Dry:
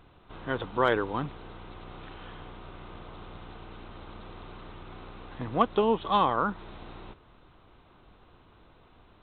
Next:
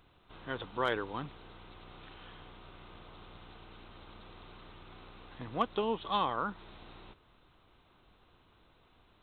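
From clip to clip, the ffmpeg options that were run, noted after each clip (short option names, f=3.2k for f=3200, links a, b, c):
-af "highshelf=f=2.6k:g=9.5,volume=-8.5dB"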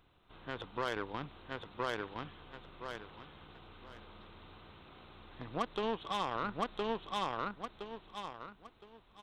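-af "aeval=exprs='0.15*(cos(1*acos(clip(val(0)/0.15,-1,1)))-cos(1*PI/2))+0.0133*(cos(7*acos(clip(val(0)/0.15,-1,1)))-cos(7*PI/2))':c=same,aecho=1:1:1015|2030|3045:0.631|0.158|0.0394,alimiter=level_in=4dB:limit=-24dB:level=0:latency=1:release=34,volume=-4dB,volume=4.5dB"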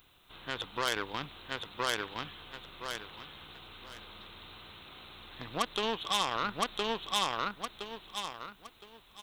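-af "crystalizer=i=7:c=0"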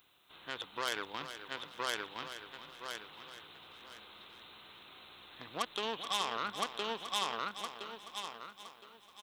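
-filter_complex "[0:a]highpass=f=270:p=1,asplit=2[a][b];[b]aecho=0:1:428|856|1284:0.282|0.0761|0.0205[c];[a][c]amix=inputs=2:normalize=0,volume=-4dB"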